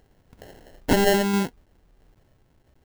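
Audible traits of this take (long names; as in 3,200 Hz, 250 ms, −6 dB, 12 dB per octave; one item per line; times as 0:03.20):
a quantiser's noise floor 12 bits, dither triangular
tremolo saw down 1.5 Hz, depth 35%
aliases and images of a low sample rate 1,200 Hz, jitter 0%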